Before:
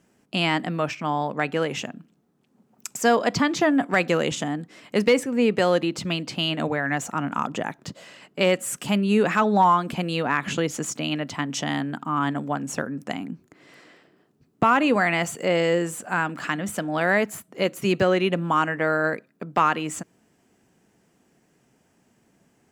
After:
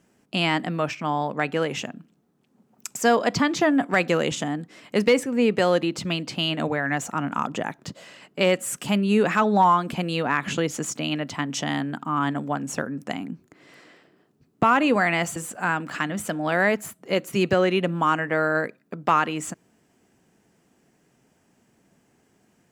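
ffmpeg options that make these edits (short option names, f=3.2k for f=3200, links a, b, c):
-filter_complex "[0:a]asplit=2[a][b];[a]atrim=end=15.362[c];[b]atrim=start=15.848[d];[c][d]acrossfade=d=0.004:c1=hsin:c2=hsin"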